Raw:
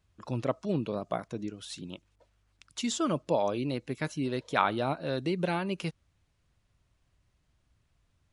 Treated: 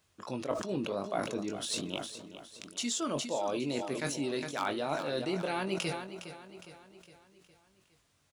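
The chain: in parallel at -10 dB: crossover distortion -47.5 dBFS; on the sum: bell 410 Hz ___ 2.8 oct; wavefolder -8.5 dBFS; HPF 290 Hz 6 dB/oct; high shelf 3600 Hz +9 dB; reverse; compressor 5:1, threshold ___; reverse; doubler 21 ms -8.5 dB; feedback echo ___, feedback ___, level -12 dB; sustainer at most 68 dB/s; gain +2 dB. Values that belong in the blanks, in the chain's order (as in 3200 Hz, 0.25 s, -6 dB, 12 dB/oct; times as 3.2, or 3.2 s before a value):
+3.5 dB, -34 dBFS, 0.411 s, 51%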